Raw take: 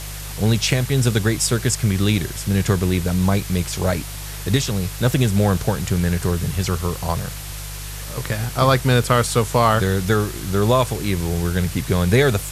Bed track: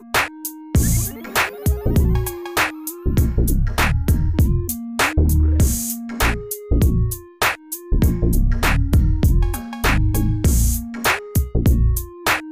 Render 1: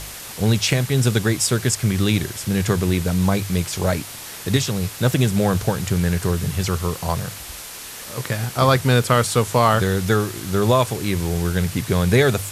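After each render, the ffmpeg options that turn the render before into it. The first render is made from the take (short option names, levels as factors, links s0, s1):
-af "bandreject=f=50:t=h:w=4,bandreject=f=100:t=h:w=4,bandreject=f=150:t=h:w=4"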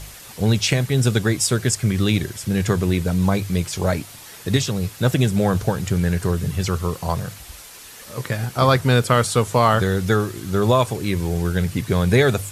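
-af "afftdn=nr=7:nf=-35"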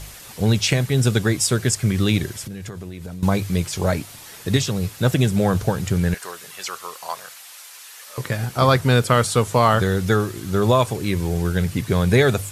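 -filter_complex "[0:a]asettb=1/sr,asplit=3[s0][s1][s2];[s0]atrim=end=2.424[s3];[s1]atrim=start=2.42:end=3.23,asetpts=PTS-STARTPTS,afade=t=in:d=0.004:c=qsin,afade=t=out:st=0.806:d=0.004:c=qsin,acompressor=threshold=0.0355:ratio=16:attack=3.2:release=140:knee=1:detection=peak[s4];[s2]atrim=start=3.226[s5];[s3][s4]acrossfade=d=0.004:c1=hsin:c2=qsin[s6];[s6][s5]acrossfade=d=0.004:c1=qsin:c2=hsin,asettb=1/sr,asplit=3[s7][s8][s9];[s7]atrim=end=6.144[s10];[s8]atrim=start=6.14:end=8.18,asetpts=PTS-STARTPTS,afade=t=in:d=0.004:c=qsin,afade=t=out:st=2.036:d=0.004:c=qsin,highpass=880[s11];[s9]atrim=start=8.176[s12];[s10][s11]acrossfade=d=0.004:c1=hsin:c2=qsin[s13];[s13][s12]acrossfade=d=0.004:c1=qsin:c2=hsin"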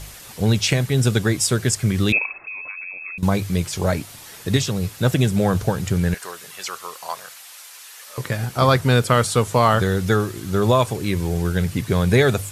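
-filter_complex "[0:a]asettb=1/sr,asplit=3[s0][s1][s2];[s0]atrim=end=2.124[s3];[s1]atrim=start=2.12:end=3.18,asetpts=PTS-STARTPTS,afade=t=in:d=0.004:c=qsin,afade=t=out:st=1.056:d=0.004:c=qsin,lowpass=f=2300:t=q:w=0.5098,lowpass=f=2300:t=q:w=0.6013,lowpass=f=2300:t=q:w=0.9,lowpass=f=2300:t=q:w=2.563,afreqshift=-2700[s4];[s2]atrim=start=3.176[s5];[s3][s4]acrossfade=d=0.004:c1=hsin:c2=qsin[s6];[s6][s5]acrossfade=d=0.004:c1=qsin:c2=hsin"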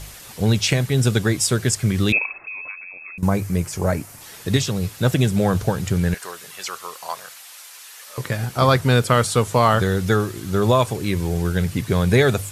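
-filter_complex "[0:a]asettb=1/sr,asplit=3[s0][s1][s2];[s0]atrim=end=2.754[s3];[s1]atrim=start=2.75:end=4.21,asetpts=PTS-STARTPTS,afade=t=in:d=0.004:c=qsin,afade=t=out:st=1.456:d=0.004:c=qsin,equalizer=f=3600:t=o:w=0.77:g=-11.5[s4];[s2]atrim=start=4.206[s5];[s3][s4]acrossfade=d=0.004:c1=hsin:c2=qsin[s6];[s6][s5]acrossfade=d=0.004:c1=qsin:c2=hsin"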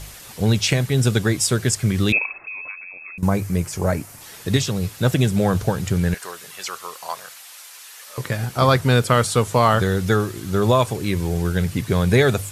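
-af anull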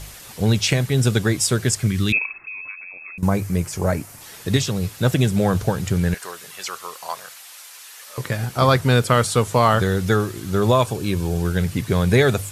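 -filter_complex "[0:a]asettb=1/sr,asplit=3[s0][s1][s2];[s0]atrim=end=1.874[s3];[s1]atrim=start=1.87:end=2.79,asetpts=PTS-STARTPTS,afade=t=in:d=0.004:c=qsin,afade=t=out:st=0.916:d=0.004:c=qsin,equalizer=f=610:t=o:w=1.2:g=-12[s4];[s2]atrim=start=2.786[s5];[s3][s4]acrossfade=d=0.004:c1=hsin:c2=qsin[s6];[s6][s5]acrossfade=d=0.004:c1=qsin:c2=hsin,asettb=1/sr,asplit=3[s7][s8][s9];[s7]atrim=end=10.864[s10];[s8]atrim=start=10.86:end=11.43,asetpts=PTS-STARTPTS,afade=t=in:d=0.004:c=qsin,afade=t=out:st=0.566:d=0.004:c=qsin,bandreject=f=2000:w=5.3[s11];[s9]atrim=start=11.426[s12];[s10][s11]acrossfade=d=0.004:c1=hsin:c2=qsin[s13];[s13][s12]acrossfade=d=0.004:c1=qsin:c2=hsin"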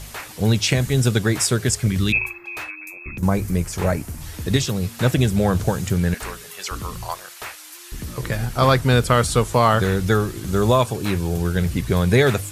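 -filter_complex "[1:a]volume=0.15[s0];[0:a][s0]amix=inputs=2:normalize=0"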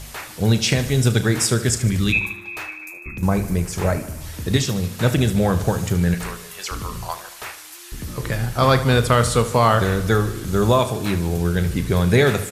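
-filter_complex "[0:a]asplit=2[s0][s1];[s1]adelay=35,volume=0.224[s2];[s0][s2]amix=inputs=2:normalize=0,aecho=1:1:75|150|225|300|375|450:0.2|0.12|0.0718|0.0431|0.0259|0.0155"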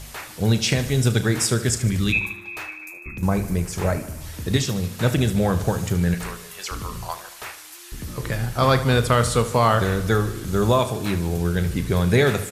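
-af "volume=0.794"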